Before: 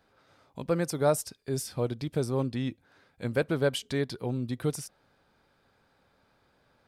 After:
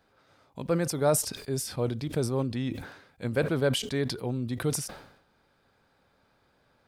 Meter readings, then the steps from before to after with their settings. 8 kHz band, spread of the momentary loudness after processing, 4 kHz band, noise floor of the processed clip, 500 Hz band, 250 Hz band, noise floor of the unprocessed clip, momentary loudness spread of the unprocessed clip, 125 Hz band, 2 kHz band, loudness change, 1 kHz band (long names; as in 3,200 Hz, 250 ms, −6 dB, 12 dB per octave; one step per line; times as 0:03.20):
+5.5 dB, 14 LU, +4.0 dB, −68 dBFS, +0.5 dB, +1.0 dB, −69 dBFS, 11 LU, +1.5 dB, +1.0 dB, +1.0 dB, +0.5 dB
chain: level that may fall only so fast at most 77 dB per second